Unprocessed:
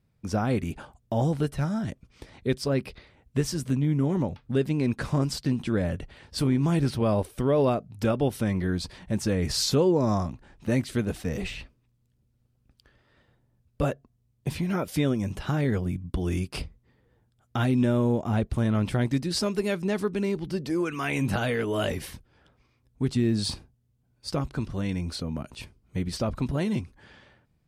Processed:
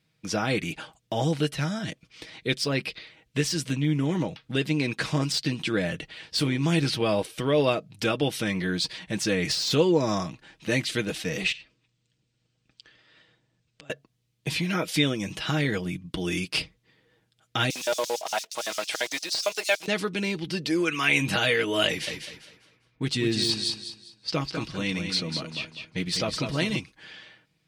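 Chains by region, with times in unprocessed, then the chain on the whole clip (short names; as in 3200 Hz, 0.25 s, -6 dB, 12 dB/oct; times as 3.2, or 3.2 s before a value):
11.52–13.9 brick-wall FIR low-pass 8900 Hz + compressor 16:1, threshold -49 dBFS
17.7–19.88 block floating point 5-bit + LFO high-pass square 8.8 Hz 680–5600 Hz
21.87–26.76 low-pass opened by the level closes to 1700 Hz, open at -26.5 dBFS + feedback echo 0.2 s, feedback 29%, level -6.5 dB
whole clip: weighting filter D; de-esser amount 50%; comb 6.3 ms, depth 49%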